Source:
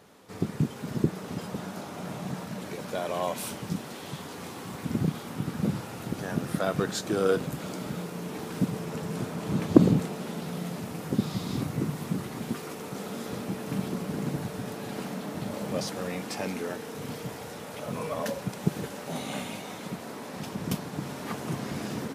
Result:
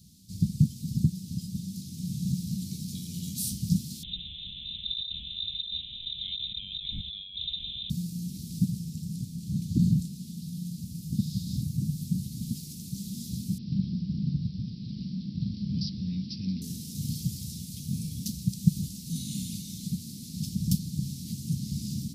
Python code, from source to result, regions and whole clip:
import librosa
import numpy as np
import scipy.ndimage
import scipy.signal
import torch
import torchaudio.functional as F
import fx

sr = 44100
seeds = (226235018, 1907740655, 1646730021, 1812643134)

y = fx.chain(x, sr, fx.highpass(hz=100.0, slope=12),
    fx.over_compress(threshold_db=-32.0, ratio=-1.0),
    fx.freq_invert(carrier_hz=3800), at=(4.03, 7.9))
y = fx.chain(y, sr, fx.lowpass(hz=3500.0, slope=6),
    fx.resample_bad(factor=4, down='none', up='filtered'), at=(13.58, 16.62))
y = scipy.signal.sosfilt(scipy.signal.ellip(3, 1.0, 60, [190.0, 4400.0], 'bandstop', fs=sr, output='sos'), y)
y = fx.peak_eq(y, sr, hz=63.0, db=9.0, octaves=1.1)
y = fx.rider(y, sr, range_db=10, speed_s=2.0)
y = y * librosa.db_to_amplitude(2.0)